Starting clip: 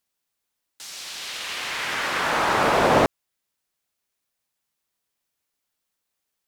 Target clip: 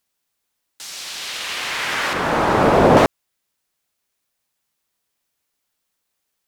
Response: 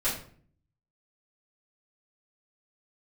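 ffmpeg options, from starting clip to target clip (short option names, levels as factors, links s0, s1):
-filter_complex "[0:a]asettb=1/sr,asplit=3[s0][s1][s2];[s0]atrim=end=2.134[s3];[s1]atrim=start=2.13:end=2.97,asetpts=PTS-STARTPTS,afade=t=in:d=0.004:c=qsin,afade=t=out:st=0.836:d=0.004:c=qsin,tiltshelf=f=800:g=7[s4];[s2]atrim=start=2.966[s5];[s3][s4]acrossfade=d=0.004:c1=hsin:c2=qsin[s6];[s6][s5]acrossfade=d=0.004:c1=qsin:c2=hsin,volume=1.68"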